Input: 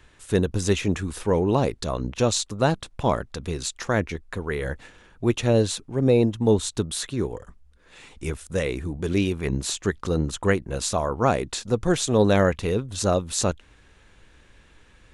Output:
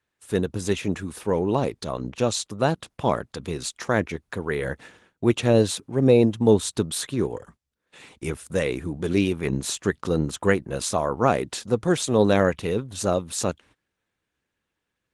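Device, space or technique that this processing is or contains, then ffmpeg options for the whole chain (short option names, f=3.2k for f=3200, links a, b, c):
video call: -af "highpass=110,dynaudnorm=f=540:g=13:m=6dB,agate=range=-20dB:threshold=-48dB:ratio=16:detection=peak,volume=-1.5dB" -ar 48000 -c:a libopus -b:a 24k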